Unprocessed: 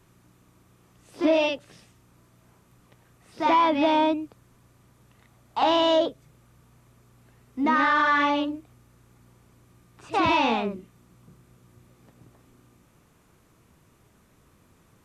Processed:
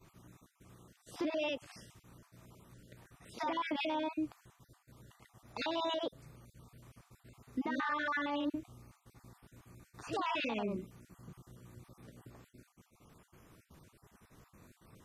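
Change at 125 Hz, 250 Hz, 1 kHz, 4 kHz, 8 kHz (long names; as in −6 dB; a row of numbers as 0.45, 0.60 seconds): −6.0 dB, −12.0 dB, −16.0 dB, −12.0 dB, can't be measured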